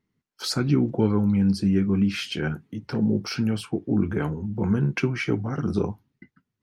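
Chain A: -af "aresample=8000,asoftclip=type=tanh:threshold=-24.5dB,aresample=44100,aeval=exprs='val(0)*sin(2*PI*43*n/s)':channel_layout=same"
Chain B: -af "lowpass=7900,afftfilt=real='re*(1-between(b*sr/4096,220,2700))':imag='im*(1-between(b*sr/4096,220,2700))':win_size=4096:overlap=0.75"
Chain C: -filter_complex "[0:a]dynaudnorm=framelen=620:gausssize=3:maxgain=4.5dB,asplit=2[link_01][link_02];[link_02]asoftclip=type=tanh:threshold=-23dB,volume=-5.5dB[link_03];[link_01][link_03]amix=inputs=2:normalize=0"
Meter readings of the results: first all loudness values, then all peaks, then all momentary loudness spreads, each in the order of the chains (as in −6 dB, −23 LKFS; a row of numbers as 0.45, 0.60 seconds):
−33.5, −26.5, −19.5 LKFS; −22.0, −13.5, −5.0 dBFS; 6, 11, 8 LU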